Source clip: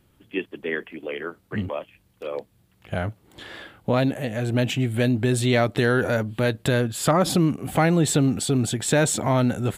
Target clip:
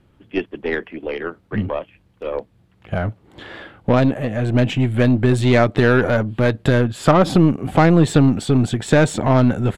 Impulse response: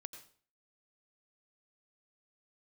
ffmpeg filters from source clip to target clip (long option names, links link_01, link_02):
-af "aresample=32000,aresample=44100,aemphasis=mode=reproduction:type=75fm,aeval=exprs='0.422*(cos(1*acos(clip(val(0)/0.422,-1,1)))-cos(1*PI/2))+0.0237*(cos(3*acos(clip(val(0)/0.422,-1,1)))-cos(3*PI/2))+0.0237*(cos(6*acos(clip(val(0)/0.422,-1,1)))-cos(6*PI/2))':channel_layout=same,volume=6.5dB"